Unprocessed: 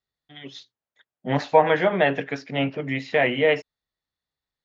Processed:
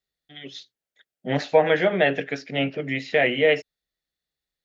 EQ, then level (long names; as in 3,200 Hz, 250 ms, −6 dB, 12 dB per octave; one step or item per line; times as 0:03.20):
graphic EQ with 15 bands 100 Hz −11 dB, 250 Hz −3 dB, 1,000 Hz −12 dB
+2.5 dB